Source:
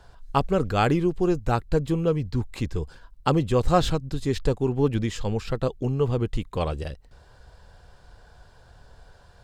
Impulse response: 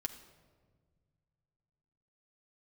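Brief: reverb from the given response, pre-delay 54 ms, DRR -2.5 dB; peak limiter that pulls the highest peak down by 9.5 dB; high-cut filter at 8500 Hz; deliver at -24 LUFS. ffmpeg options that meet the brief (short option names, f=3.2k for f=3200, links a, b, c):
-filter_complex "[0:a]lowpass=8.5k,alimiter=limit=-15.5dB:level=0:latency=1,asplit=2[a][b];[1:a]atrim=start_sample=2205,adelay=54[c];[b][c]afir=irnorm=-1:irlink=0,volume=3.5dB[d];[a][d]amix=inputs=2:normalize=0,volume=-1.5dB"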